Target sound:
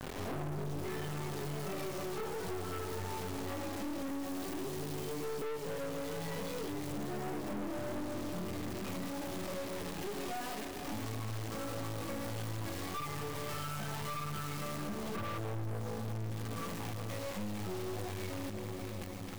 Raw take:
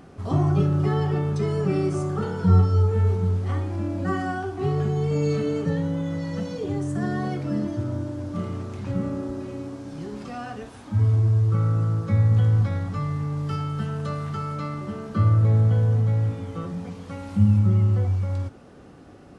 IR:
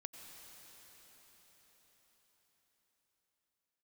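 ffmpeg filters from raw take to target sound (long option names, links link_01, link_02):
-filter_complex "[0:a]highpass=300,lowpass=4500,acrusher=bits=4:mode=log:mix=0:aa=0.000001,aphaser=in_gain=1:out_gain=1:delay=3.7:decay=0.62:speed=0.13:type=sinusoidal,asettb=1/sr,asplit=3[link_01][link_02][link_03];[link_01]atrim=end=4.084[link_04];[link_02]atrim=start=4.08:end=5.42,asetpts=PTS-STARTPTS,afade=type=in:duration=0.004:curve=qsin,afade=type=out:start_time=1.336:duration=0.004:curve=qsin,acrossover=split=460|3000[link_05][link_06][link_07];[link_06]acompressor=threshold=-56dB:ratio=2[link_08];[link_05][link_08][link_07]amix=inputs=3:normalize=0[link_09];[link_03]atrim=start=5.416[link_10];[link_04][link_09]acrossfade=duration=0.004:curve1=hsin:curve2=qsin[link_11];[link_11][link_10]acrossfade=duration=0.004:curve1=qsin:curve2=hsin,flanger=delay=19:depth=3.3:speed=1.6,acrusher=bits=6:mix=0:aa=0.000001,bandreject=frequency=1400:width=6.8,asplit=2[link_12][link_13];[1:a]atrim=start_sample=2205,lowshelf=frequency=180:gain=11[link_14];[link_13][link_14]afir=irnorm=-1:irlink=0,volume=3dB[link_15];[link_12][link_15]amix=inputs=2:normalize=0,acompressor=threshold=-45dB:ratio=3,aeval=exprs='(tanh(251*val(0)+0.7)-tanh(0.7))/251':channel_layout=same,volume=11dB"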